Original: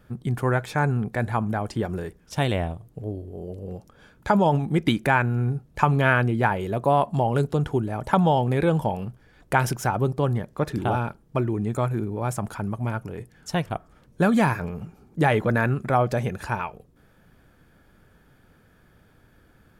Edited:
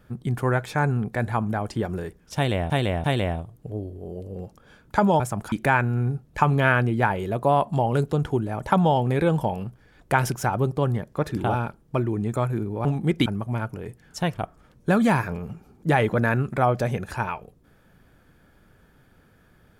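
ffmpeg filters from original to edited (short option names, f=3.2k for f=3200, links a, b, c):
-filter_complex "[0:a]asplit=7[a][b][c][d][e][f][g];[a]atrim=end=2.702[h];[b]atrim=start=2.358:end=2.702[i];[c]atrim=start=2.358:end=4.522[j];[d]atrim=start=12.258:end=12.582[k];[e]atrim=start=4.928:end=12.262[l];[f]atrim=start=4.518:end=4.932[m];[g]atrim=start=12.578[n];[h][i]acrossfade=d=0.004:c1=hsin:c2=hsin[o];[o][j]acrossfade=d=0.004:c1=hsin:c2=hsin[p];[p][k]acrossfade=d=0.004:c1=hsin:c2=hsin[q];[q][l]acrossfade=d=0.004:c1=hsin:c2=hsin[r];[r][m]acrossfade=d=0.004:c1=hsin:c2=hsin[s];[s][n]acrossfade=d=0.004:c1=hsin:c2=hsin"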